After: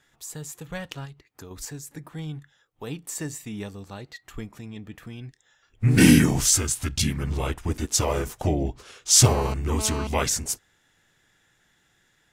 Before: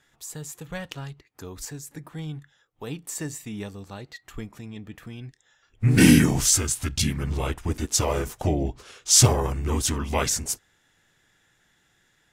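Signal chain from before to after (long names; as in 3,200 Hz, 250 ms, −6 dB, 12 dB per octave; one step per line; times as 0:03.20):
0:01.05–0:01.51: downward compressor, threshold −39 dBFS, peak gain reduction 5.5 dB
0:09.26–0:10.07: phone interference −34 dBFS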